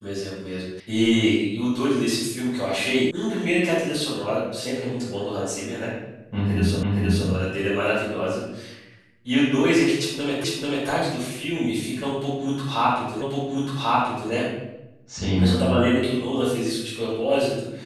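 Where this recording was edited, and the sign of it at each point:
0.80 s: sound stops dead
3.11 s: sound stops dead
6.83 s: repeat of the last 0.47 s
10.44 s: repeat of the last 0.44 s
13.22 s: repeat of the last 1.09 s

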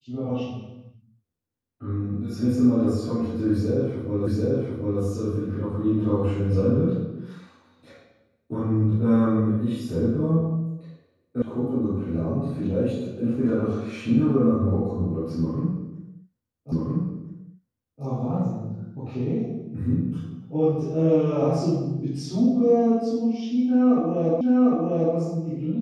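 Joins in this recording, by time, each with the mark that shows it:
4.27 s: repeat of the last 0.74 s
11.42 s: sound stops dead
16.72 s: repeat of the last 1.32 s
24.41 s: repeat of the last 0.75 s

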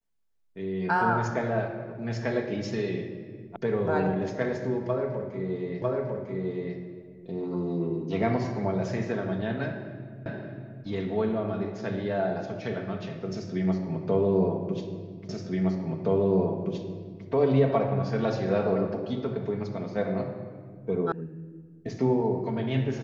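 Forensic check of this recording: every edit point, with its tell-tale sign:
3.56 s: sound stops dead
5.82 s: repeat of the last 0.95 s
10.26 s: repeat of the last 0.58 s
15.29 s: repeat of the last 1.97 s
21.12 s: sound stops dead

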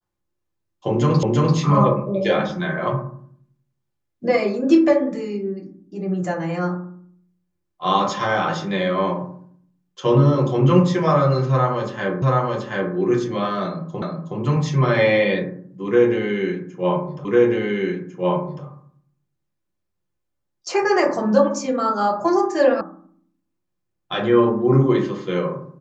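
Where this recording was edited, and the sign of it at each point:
1.23 s: repeat of the last 0.34 s
12.22 s: repeat of the last 0.73 s
14.02 s: repeat of the last 0.37 s
17.25 s: repeat of the last 1.4 s
22.81 s: sound stops dead

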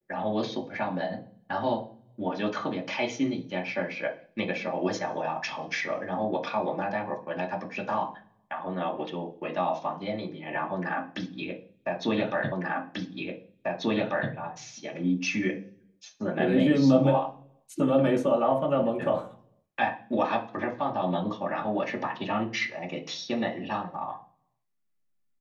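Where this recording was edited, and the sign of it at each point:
12.52 s: repeat of the last 1.79 s

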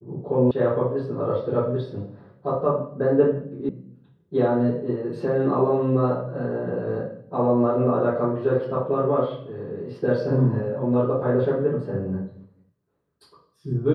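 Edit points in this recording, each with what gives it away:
0.51 s: sound stops dead
3.69 s: sound stops dead

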